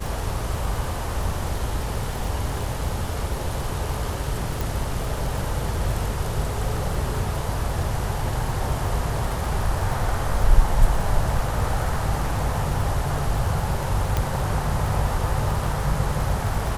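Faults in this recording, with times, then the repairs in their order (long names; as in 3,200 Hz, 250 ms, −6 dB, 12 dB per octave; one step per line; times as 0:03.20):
surface crackle 30 per second −27 dBFS
0:04.61: click
0:14.17: click −9 dBFS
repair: click removal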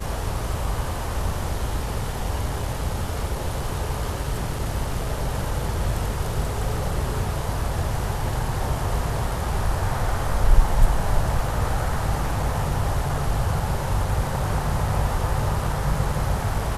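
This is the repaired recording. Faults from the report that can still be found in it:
none of them is left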